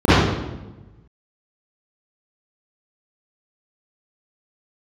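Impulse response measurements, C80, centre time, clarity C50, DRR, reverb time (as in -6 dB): -1.0 dB, 111 ms, -8.5 dB, -15.5 dB, 1.1 s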